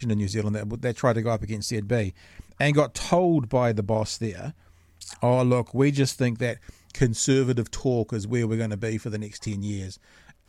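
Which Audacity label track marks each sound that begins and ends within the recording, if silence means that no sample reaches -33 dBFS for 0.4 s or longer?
5.020000	9.940000	sound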